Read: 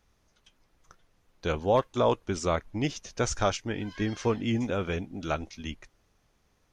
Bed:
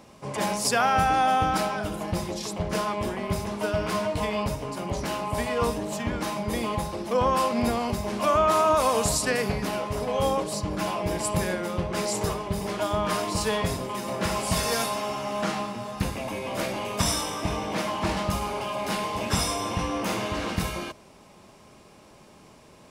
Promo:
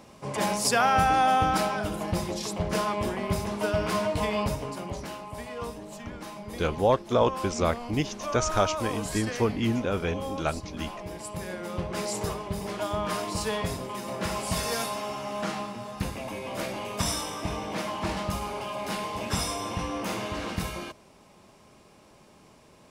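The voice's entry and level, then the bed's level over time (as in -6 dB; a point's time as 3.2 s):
5.15 s, +1.5 dB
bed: 4.58 s 0 dB
5.26 s -10.5 dB
11.36 s -10.5 dB
11.77 s -3.5 dB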